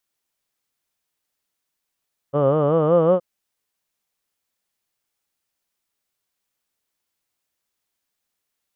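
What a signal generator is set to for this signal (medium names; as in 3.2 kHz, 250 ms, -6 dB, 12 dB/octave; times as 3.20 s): formant vowel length 0.87 s, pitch 137 Hz, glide +4.5 st, vibrato depth 1.1 st, F1 530 Hz, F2 1.2 kHz, F3 3 kHz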